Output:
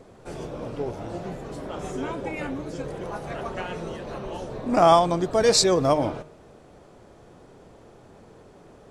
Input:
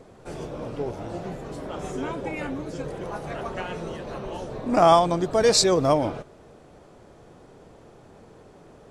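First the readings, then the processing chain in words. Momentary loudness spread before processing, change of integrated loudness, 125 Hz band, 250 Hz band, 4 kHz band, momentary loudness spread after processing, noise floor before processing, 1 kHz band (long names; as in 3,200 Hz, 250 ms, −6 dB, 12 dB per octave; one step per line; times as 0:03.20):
17 LU, 0.0 dB, −0.5 dB, 0.0 dB, 0.0 dB, 17 LU, −51 dBFS, 0.0 dB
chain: hum removal 154 Hz, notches 19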